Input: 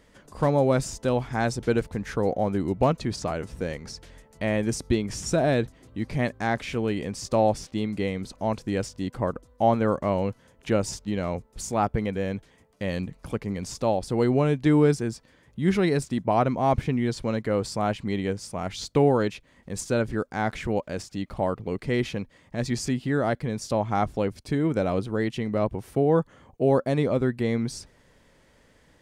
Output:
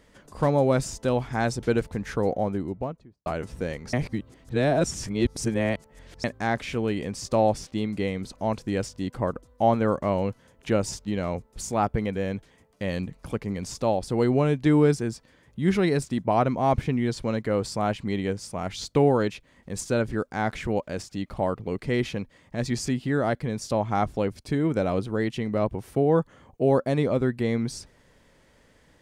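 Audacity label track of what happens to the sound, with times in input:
2.220000	3.260000	studio fade out
3.930000	6.240000	reverse

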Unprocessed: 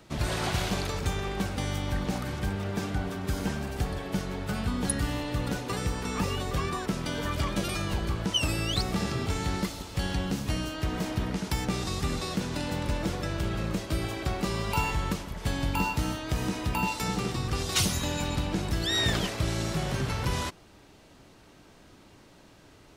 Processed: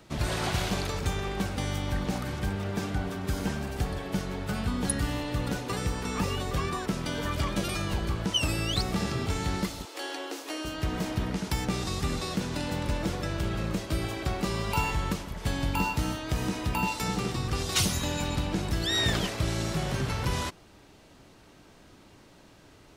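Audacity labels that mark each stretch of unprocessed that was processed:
9.850000	10.650000	elliptic high-pass 300 Hz

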